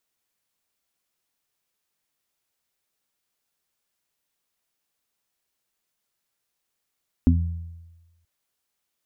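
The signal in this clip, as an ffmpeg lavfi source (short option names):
-f lavfi -i "aevalsrc='0.188*pow(10,-3*t/1.16)*sin(2*PI*84.2*t)+0.0841*pow(10,-3*t/0.79)*sin(2*PI*168.4*t)+0.282*pow(10,-3*t/0.21)*sin(2*PI*252.6*t)':d=0.98:s=44100"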